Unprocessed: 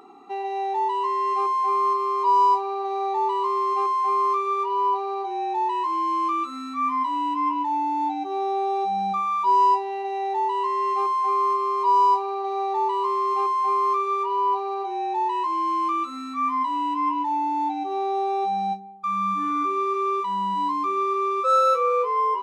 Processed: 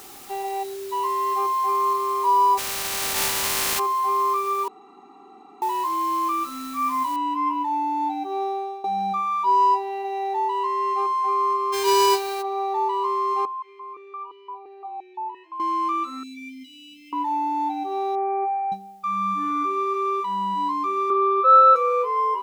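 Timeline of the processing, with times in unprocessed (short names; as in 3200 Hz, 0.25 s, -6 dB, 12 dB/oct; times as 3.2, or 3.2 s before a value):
0.63–0.92 spectral delete 760–3800 Hz
2.57–3.78 spectral contrast lowered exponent 0.15
4.68–5.62 room tone
7.16 noise floor step -44 dB -67 dB
8.42–8.84 fade out, to -16.5 dB
11.72–12.41 spectral whitening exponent 0.3
13.45–15.6 vowel sequencer 5.8 Hz
16.23–17.13 brick-wall FIR band-stop 270–2100 Hz
18.15–18.72 brick-wall FIR band-pass 290–2600 Hz
21.1–21.76 speaker cabinet 290–3800 Hz, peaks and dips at 400 Hz +6 dB, 840 Hz +9 dB, 1400 Hz +8 dB, 2000 Hz -5 dB, 2800 Hz -4 dB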